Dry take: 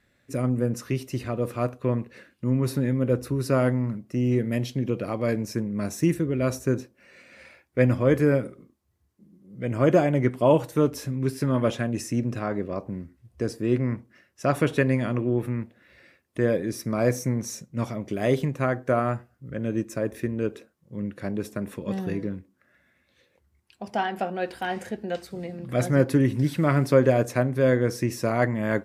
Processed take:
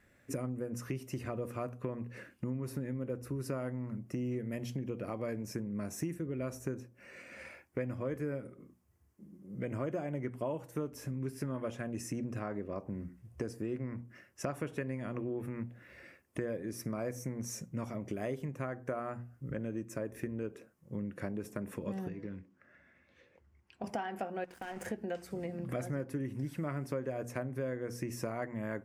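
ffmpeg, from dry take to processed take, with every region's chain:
-filter_complex "[0:a]asettb=1/sr,asplit=3[a][b][c];[a]atrim=end=22.084[d];[b]atrim=start=22.08:end=23.84,asetpts=PTS-STARTPTS,afade=t=in:d=0.004:c=qsin,afade=t=out:st=1.756:d=0.004:c=qsin,lowpass=4.8k,acrossover=split=1100|2200[e][f][g];[e]acompressor=threshold=-39dB:ratio=4[h];[f]acompressor=threshold=-60dB:ratio=4[i];[g]acompressor=threshold=-57dB:ratio=4[j];[h][i][j]amix=inputs=3:normalize=0[k];[c]atrim=start=23.836[l];[d][k]acrossfade=d=0.004:c1=hsin:c2=qsin[m];[m][l]acrossfade=d=0.004:c1=qsin:c2=hsin,asettb=1/sr,asplit=3[n][o][p];[n]atrim=end=24.444[q];[o]atrim=start=24.44:end=24.86,asetpts=PTS-STARTPTS,afade=t=in:d=0.004:c=qsin,afade=t=out:st=0.416:d=0.004:c=qsin,acompressor=threshold=-34dB:ratio=10:attack=3.2:release=140:knee=1:detection=peak,aeval=exprs='sgn(val(0))*max(abs(val(0))-0.00447,0)':c=same[r];[p]atrim=start=24.856[s];[q][r]acrossfade=d=0.004:c1=hsin:c2=qsin[t];[t][s]acrossfade=d=0.004:c1=qsin:c2=hsin,equalizer=f=3.9k:w=2.4:g=-10,bandreject=f=60:t=h:w=6,bandreject=f=120:t=h:w=6,bandreject=f=180:t=h:w=6,bandreject=f=240:t=h:w=6,acompressor=threshold=-36dB:ratio=6,volume=1dB"

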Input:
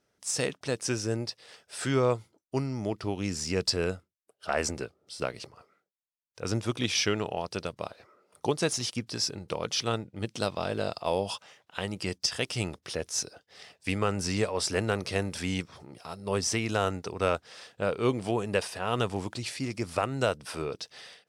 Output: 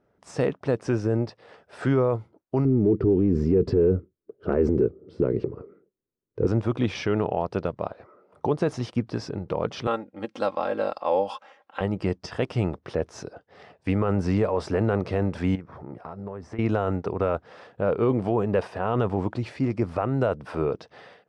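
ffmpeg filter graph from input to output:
-filter_complex "[0:a]asettb=1/sr,asplit=3[a][b][c];[a]atrim=end=2.654[d];[b]atrim=start=2.65:end=6.47,asetpts=PTS-STARTPTS,afade=t=in:d=0.004:c=qsin,afade=t=out:st=3.816:d=0.004:c=qsin,lowpass=f=2k:p=1,lowshelf=f=540:t=q:w=3:g=10[e];[c]atrim=start=6.466[f];[d][e]acrossfade=d=0.004:c1=hsin:c2=qsin[g];[g][f]acrossfade=d=0.004:c1=qsin:c2=hsin,asettb=1/sr,asplit=3[h][i][j];[h]atrim=end=9.874[k];[i]atrim=start=9.87:end=11.81,asetpts=PTS-STARTPTS,afade=t=in:d=0.004:c=qsin,afade=t=out:st=1.936:d=0.004:c=qsin,highpass=f=730:p=1,aecho=1:1:3.7:0.69,atrim=end_sample=85554[l];[j]atrim=start=11.806[m];[k][l]acrossfade=d=0.004:c1=hsin:c2=qsin[n];[n][m]acrossfade=d=0.004:c1=qsin:c2=hsin,asettb=1/sr,asplit=3[o][p][q];[o]atrim=end=15.554[r];[p]atrim=start=15.55:end=16.59,asetpts=PTS-STARTPTS,afade=t=in:d=0.004:c=qsin,afade=t=out:st=1.036:d=0.004:c=qsin,highshelf=f=2.4k:t=q:w=1.5:g=-6,acompressor=threshold=-39dB:ratio=12:attack=3.2:release=140:knee=1:detection=peak[s];[q]atrim=start=16.586[t];[r][s]acrossfade=d=0.004:c1=hsin:c2=qsin[u];[u][t]acrossfade=d=0.004:c1=qsin:c2=hsin,lowpass=1.1k,aemphasis=mode=production:type=50fm,alimiter=limit=-22dB:level=0:latency=1:release=21,volume=9dB"

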